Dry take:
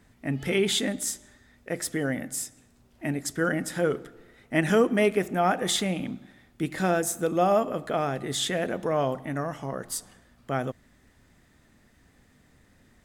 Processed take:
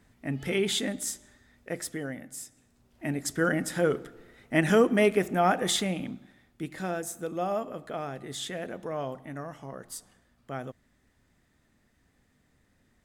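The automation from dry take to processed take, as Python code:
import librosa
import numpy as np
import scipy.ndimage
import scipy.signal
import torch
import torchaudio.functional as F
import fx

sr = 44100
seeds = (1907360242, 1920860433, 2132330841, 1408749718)

y = fx.gain(x, sr, db=fx.line((1.73, -3.0), (2.23, -10.0), (3.31, 0.0), (5.57, 0.0), (6.84, -8.0)))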